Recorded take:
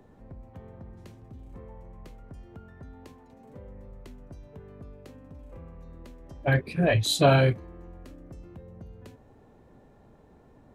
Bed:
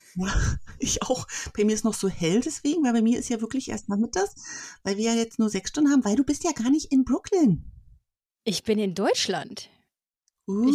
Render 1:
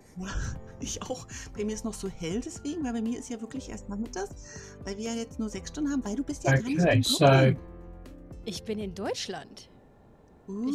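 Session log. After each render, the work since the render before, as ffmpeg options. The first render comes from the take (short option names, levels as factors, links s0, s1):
-filter_complex "[1:a]volume=0.335[s0];[0:a][s0]amix=inputs=2:normalize=0"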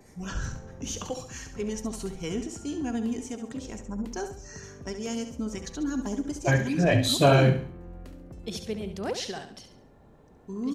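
-af "aecho=1:1:69|138|207|276:0.355|0.131|0.0486|0.018"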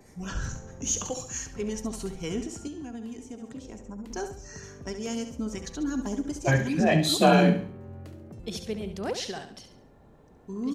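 -filter_complex "[0:a]asettb=1/sr,asplit=3[s0][s1][s2];[s0]atrim=end=0.494[s3];[s1]atrim=start=0.49:end=1.46,asetpts=PTS-STARTPTS,afade=t=in:d=0.004:c=qsin,afade=t=out:st=0.966:d=0.004:c=qsin,equalizer=f=6700:w=4.5:g=12[s4];[s2]atrim=start=1.456[s5];[s3][s4]acrossfade=d=0.004:c1=hsin:c2=qsin[s6];[s6][s5]acrossfade=d=0.004:c1=qsin:c2=hsin,asettb=1/sr,asplit=3[s7][s8][s9];[s7]atrim=end=2.674[s10];[s8]atrim=start=2.67:end=4.1,asetpts=PTS-STARTPTS,afade=t=in:d=0.004:c=qsin,afade=t=out:st=1.426:d=0.004:c=qsin,acrossover=split=190|880[s11][s12][s13];[s11]acompressor=threshold=0.00447:ratio=4[s14];[s12]acompressor=threshold=0.01:ratio=4[s15];[s13]acompressor=threshold=0.00224:ratio=4[s16];[s14][s15][s16]amix=inputs=3:normalize=0[s17];[s9]atrim=start=4.096[s18];[s10][s17]acrossfade=d=0.004:c1=hsin:c2=qsin[s19];[s19][s18]acrossfade=d=0.004:c1=qsin:c2=hsin,asettb=1/sr,asplit=3[s20][s21][s22];[s20]atrim=end=6.804[s23];[s21]atrim=start=6.8:end=8.4,asetpts=PTS-STARTPTS,afade=t=in:d=0.004:c=qsin,afade=t=out:st=1.596:d=0.004:c=qsin,afreqshift=47[s24];[s22]atrim=start=8.396[s25];[s23][s24]acrossfade=d=0.004:c1=hsin:c2=qsin[s26];[s26][s25]acrossfade=d=0.004:c1=qsin:c2=hsin"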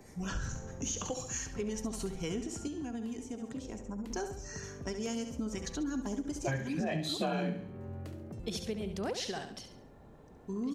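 -filter_complex "[0:a]acrossover=split=5600[s0][s1];[s1]alimiter=level_in=2.24:limit=0.0631:level=0:latency=1:release=495,volume=0.447[s2];[s0][s2]amix=inputs=2:normalize=0,acompressor=threshold=0.0224:ratio=4"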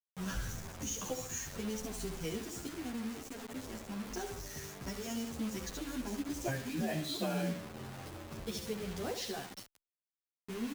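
-filter_complex "[0:a]acrusher=bits=6:mix=0:aa=0.000001,asplit=2[s0][s1];[s1]adelay=10.5,afreqshift=-1.3[s2];[s0][s2]amix=inputs=2:normalize=1"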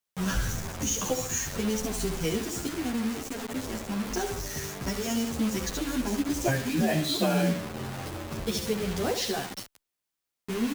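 -af "volume=3.16"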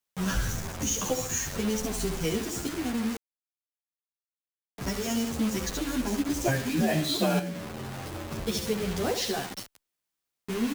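-filter_complex "[0:a]asettb=1/sr,asplit=3[s0][s1][s2];[s0]atrim=end=7.394[s3];[s1]atrim=start=7.39:end=8.15,asetpts=PTS-STARTPTS,afade=t=in:d=0.004:c=qsin,afade=t=out:st=0.756:d=0.004:c=qsin,acompressor=threshold=0.0224:ratio=3:attack=3.2:release=140:knee=1:detection=peak[s4];[s2]atrim=start=8.146[s5];[s3][s4]acrossfade=d=0.004:c1=hsin:c2=qsin[s6];[s6][s5]acrossfade=d=0.004:c1=qsin:c2=hsin,asplit=3[s7][s8][s9];[s7]atrim=end=3.17,asetpts=PTS-STARTPTS,afade=t=out:st=3.166:d=0.004:c=hsin[s10];[s8]atrim=start=3.17:end=4.78,asetpts=PTS-STARTPTS,volume=0[s11];[s9]atrim=start=4.78,asetpts=PTS-STARTPTS,afade=t=in:d=0.004:c=hsin[s12];[s10][s11][s12]concat=n=3:v=0:a=1"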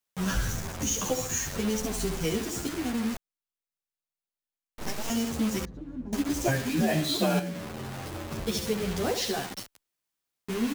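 -filter_complex "[0:a]asettb=1/sr,asplit=3[s0][s1][s2];[s0]atrim=end=3.144[s3];[s1]atrim=start=3.14:end=5.1,asetpts=PTS-STARTPTS,afade=t=in:d=0.004:c=qsin,afade=t=out:st=1.956:d=0.004:c=qsin,aeval=exprs='abs(val(0))':c=same[s4];[s2]atrim=start=5.096[s5];[s3][s4]acrossfade=d=0.004:c1=hsin:c2=qsin[s6];[s6][s5]acrossfade=d=0.004:c1=qsin:c2=hsin,asettb=1/sr,asplit=3[s7][s8][s9];[s7]atrim=end=5.654[s10];[s8]atrim=start=5.65:end=6.13,asetpts=PTS-STARTPTS,afade=t=in:d=0.004:c=qsin,afade=t=out:st=0.476:d=0.004:c=qsin,bandpass=f=110:t=q:w=1.1[s11];[s9]atrim=start=6.126[s12];[s10][s11]acrossfade=d=0.004:c1=hsin:c2=qsin[s13];[s13][s12]acrossfade=d=0.004:c1=qsin:c2=hsin"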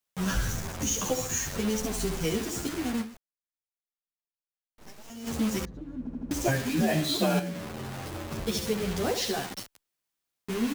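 -filter_complex "[0:a]asplit=7[s0][s1][s2][s3][s4][s5][s6];[s0]atrim=end=3.26,asetpts=PTS-STARTPTS,afade=t=out:st=3.01:d=0.25:c=exp:silence=0.177828[s7];[s1]atrim=start=3.26:end=5.03,asetpts=PTS-STARTPTS,volume=0.178[s8];[s2]atrim=start=5.03:end=6.072,asetpts=PTS-STARTPTS,afade=t=in:d=0.25:c=exp:silence=0.177828[s9];[s3]atrim=start=5.988:end=6.072[s10];[s4]atrim=start=5.988:end=6.072[s11];[s5]atrim=start=5.988:end=6.072[s12];[s6]atrim=start=6.308[s13];[s7][s8][s9]concat=n=3:v=0:a=1[s14];[s14][s10]acrossfade=d=0.004:c1=hsin:c2=hsin[s15];[s15][s11]acrossfade=d=0.004:c1=hsin:c2=hsin[s16];[s16][s12]acrossfade=d=0.004:c1=hsin:c2=hsin[s17];[s17][s13]acrossfade=d=0.004:c1=hsin:c2=hsin"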